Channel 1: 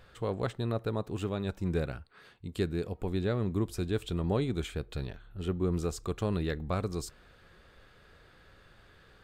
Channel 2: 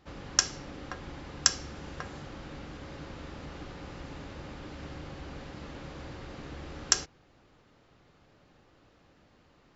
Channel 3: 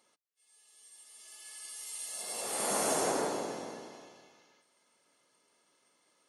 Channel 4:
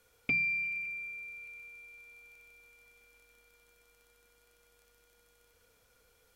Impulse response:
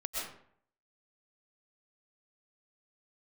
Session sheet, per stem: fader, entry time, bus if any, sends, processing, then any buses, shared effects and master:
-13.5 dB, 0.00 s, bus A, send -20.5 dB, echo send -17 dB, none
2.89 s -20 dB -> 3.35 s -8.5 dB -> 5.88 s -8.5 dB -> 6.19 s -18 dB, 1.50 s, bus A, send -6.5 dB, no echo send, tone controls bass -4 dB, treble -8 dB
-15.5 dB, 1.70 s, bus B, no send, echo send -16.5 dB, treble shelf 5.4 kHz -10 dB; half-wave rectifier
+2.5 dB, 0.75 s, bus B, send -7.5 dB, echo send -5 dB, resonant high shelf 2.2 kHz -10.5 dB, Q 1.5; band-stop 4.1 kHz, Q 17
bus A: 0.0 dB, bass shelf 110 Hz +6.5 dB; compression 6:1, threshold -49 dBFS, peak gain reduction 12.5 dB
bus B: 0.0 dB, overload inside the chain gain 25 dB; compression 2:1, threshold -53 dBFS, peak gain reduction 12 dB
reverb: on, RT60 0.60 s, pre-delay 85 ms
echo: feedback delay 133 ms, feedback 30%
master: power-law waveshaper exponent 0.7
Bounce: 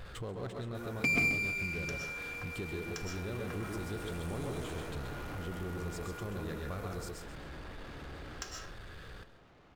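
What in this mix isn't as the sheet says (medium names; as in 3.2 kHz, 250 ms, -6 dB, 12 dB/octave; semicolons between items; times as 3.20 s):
stem 1 -13.5 dB -> -4.0 dB; stem 4 +2.5 dB -> +9.5 dB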